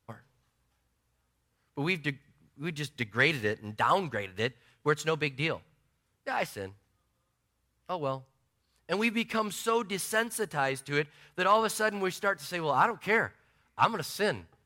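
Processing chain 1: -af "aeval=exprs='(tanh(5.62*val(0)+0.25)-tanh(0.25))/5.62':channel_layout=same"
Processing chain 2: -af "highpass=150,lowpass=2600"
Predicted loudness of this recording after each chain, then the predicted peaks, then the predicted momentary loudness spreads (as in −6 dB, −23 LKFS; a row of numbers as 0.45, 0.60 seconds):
−31.5, −31.0 LKFS; −14.5, −9.5 dBFS; 12, 12 LU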